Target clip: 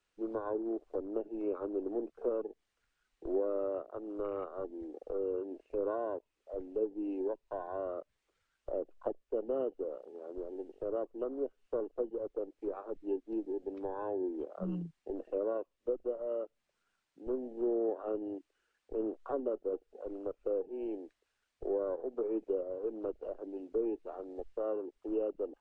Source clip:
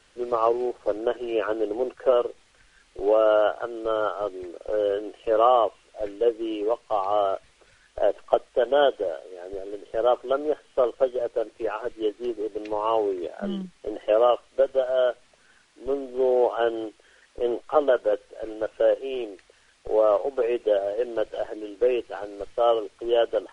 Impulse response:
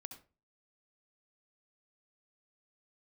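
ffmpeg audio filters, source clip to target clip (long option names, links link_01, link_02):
-filter_complex "[0:a]acrossover=split=410[link_01][link_02];[link_02]acompressor=threshold=-34dB:ratio=5[link_03];[link_01][link_03]amix=inputs=2:normalize=0,afwtdn=0.0112,asetrate=40517,aresample=44100,volume=-6.5dB"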